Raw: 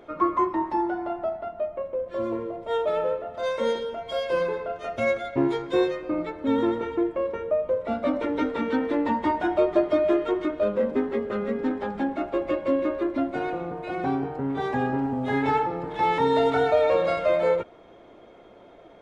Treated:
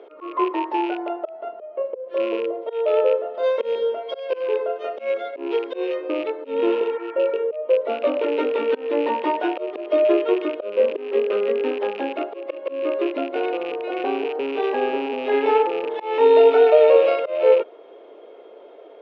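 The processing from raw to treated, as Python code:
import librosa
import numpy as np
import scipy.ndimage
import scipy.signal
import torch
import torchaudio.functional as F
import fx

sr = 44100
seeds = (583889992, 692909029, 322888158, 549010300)

y = fx.rattle_buzz(x, sr, strikes_db=-38.0, level_db=-26.0)
y = fx.auto_swell(y, sr, attack_ms=229.0)
y = fx.peak_eq(y, sr, hz=600.0, db=9.0, octaves=1.5)
y = fx.spec_repair(y, sr, seeds[0], start_s=6.69, length_s=0.67, low_hz=750.0, high_hz=2500.0, source='both')
y = fx.cabinet(y, sr, low_hz=300.0, low_slope=24, high_hz=5000.0, hz=(430.0, 720.0, 2900.0), db=(8, -4, 8))
y = y * 10.0 ** (-2.5 / 20.0)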